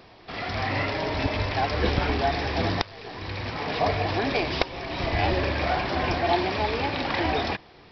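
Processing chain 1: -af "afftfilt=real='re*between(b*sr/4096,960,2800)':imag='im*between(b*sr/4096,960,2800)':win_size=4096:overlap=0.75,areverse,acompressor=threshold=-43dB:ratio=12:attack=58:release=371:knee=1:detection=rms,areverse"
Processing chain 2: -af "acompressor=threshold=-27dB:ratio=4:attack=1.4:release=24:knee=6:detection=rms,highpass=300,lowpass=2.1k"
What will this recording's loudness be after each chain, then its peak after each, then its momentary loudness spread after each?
-44.0, -34.0 LUFS; -22.5, -18.0 dBFS; 2, 6 LU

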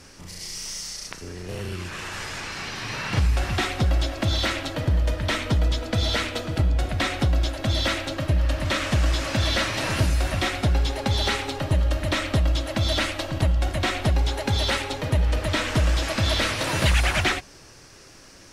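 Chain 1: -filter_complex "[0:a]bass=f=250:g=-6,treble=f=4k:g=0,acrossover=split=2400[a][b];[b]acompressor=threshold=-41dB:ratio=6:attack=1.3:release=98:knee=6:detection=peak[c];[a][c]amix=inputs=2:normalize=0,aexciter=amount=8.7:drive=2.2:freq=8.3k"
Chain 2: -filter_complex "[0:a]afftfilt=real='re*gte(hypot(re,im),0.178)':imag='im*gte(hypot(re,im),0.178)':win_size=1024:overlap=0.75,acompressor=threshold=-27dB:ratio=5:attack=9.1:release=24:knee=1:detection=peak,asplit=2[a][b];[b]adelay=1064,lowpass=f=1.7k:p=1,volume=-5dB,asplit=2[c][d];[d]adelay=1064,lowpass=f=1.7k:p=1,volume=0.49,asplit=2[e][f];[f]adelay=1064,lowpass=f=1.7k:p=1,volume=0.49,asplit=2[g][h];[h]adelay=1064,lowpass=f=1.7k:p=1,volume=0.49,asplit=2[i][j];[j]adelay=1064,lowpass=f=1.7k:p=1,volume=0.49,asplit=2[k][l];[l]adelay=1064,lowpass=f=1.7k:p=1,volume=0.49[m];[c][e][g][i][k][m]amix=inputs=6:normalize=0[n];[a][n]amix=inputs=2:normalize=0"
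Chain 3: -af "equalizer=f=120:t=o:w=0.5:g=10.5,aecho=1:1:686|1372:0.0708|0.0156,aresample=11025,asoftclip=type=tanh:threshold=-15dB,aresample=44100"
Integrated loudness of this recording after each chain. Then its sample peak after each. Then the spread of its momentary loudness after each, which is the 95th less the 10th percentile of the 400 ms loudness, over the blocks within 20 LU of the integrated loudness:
-28.5, -30.0, -24.5 LUFS; -12.5, -15.0, -13.5 dBFS; 9, 7, 9 LU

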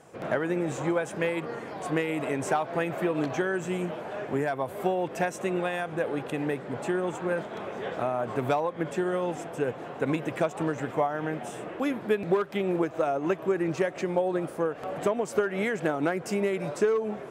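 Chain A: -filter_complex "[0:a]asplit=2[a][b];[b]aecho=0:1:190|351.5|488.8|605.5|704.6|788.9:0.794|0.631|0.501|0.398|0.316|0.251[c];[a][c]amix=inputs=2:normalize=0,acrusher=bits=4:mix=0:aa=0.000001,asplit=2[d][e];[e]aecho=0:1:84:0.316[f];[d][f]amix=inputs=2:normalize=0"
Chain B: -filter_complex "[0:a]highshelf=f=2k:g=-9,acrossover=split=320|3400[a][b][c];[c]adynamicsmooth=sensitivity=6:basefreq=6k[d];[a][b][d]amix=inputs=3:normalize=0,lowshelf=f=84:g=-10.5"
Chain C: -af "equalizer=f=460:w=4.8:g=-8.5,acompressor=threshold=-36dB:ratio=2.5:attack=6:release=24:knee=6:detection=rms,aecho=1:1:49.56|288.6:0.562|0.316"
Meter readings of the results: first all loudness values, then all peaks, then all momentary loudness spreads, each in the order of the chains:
-24.0, -30.5, -35.0 LUFS; -9.0, -13.5, -20.5 dBFS; 3, 5, 3 LU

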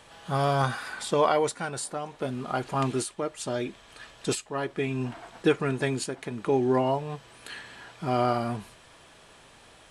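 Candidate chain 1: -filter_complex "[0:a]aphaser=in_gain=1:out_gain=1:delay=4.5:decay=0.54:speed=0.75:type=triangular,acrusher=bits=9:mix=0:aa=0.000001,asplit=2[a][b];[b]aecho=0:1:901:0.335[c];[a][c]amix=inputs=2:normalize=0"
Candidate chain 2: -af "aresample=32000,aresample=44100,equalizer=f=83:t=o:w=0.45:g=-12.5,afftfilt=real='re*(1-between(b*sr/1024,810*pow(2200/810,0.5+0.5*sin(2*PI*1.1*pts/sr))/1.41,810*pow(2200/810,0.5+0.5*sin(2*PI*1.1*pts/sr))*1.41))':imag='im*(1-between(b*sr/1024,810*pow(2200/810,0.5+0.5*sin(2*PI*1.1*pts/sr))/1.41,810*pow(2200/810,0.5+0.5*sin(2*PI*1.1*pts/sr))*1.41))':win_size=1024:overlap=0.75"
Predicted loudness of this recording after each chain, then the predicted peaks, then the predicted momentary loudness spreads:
-28.0, -29.5 LUFS; -7.0, -11.5 dBFS; 13, 13 LU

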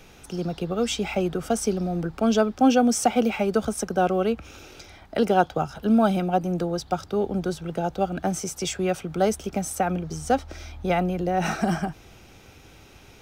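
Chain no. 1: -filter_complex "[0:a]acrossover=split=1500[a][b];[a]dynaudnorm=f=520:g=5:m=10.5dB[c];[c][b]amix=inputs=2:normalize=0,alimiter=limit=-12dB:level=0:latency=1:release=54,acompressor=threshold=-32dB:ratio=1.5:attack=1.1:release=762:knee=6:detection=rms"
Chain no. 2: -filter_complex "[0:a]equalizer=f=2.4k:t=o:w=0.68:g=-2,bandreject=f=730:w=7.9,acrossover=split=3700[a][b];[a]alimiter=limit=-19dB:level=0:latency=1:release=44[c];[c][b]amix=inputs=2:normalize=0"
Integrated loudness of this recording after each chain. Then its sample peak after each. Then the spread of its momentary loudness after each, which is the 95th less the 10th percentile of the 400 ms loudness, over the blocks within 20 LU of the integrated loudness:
-29.0, -29.0 LUFS; -17.5, -15.0 dBFS; 18, 7 LU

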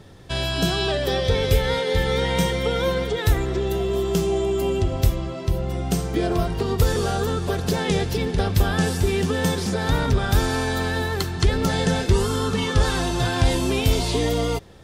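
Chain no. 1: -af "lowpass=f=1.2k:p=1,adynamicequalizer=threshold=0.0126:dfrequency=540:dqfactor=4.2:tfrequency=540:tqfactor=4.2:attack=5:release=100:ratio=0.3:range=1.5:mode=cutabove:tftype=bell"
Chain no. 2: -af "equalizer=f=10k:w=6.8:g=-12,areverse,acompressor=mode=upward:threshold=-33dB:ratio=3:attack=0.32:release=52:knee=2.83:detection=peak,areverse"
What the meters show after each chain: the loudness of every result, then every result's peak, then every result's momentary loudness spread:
-24.0, -22.5 LUFS; -8.5, -7.5 dBFS; 4, 4 LU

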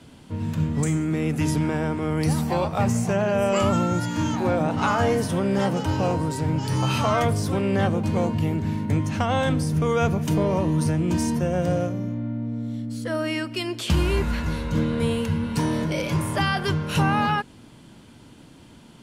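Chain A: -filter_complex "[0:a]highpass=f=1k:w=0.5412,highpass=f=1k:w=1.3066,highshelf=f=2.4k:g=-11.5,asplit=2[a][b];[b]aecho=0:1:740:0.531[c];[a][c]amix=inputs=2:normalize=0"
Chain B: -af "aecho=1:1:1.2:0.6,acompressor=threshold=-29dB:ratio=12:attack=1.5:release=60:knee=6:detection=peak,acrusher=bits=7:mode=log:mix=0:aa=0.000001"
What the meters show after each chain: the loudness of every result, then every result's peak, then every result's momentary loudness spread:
-35.0, -33.5 LUFS; -17.0, -20.0 dBFS; 13, 2 LU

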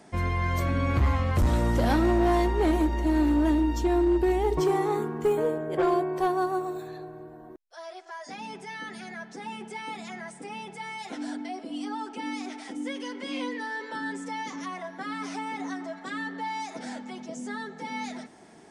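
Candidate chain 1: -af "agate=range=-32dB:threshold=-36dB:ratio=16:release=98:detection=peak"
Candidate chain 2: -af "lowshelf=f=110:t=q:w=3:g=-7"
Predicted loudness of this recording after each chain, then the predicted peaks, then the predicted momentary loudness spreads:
-27.5, -28.5 LUFS; -17.5, -14.0 dBFS; 17, 16 LU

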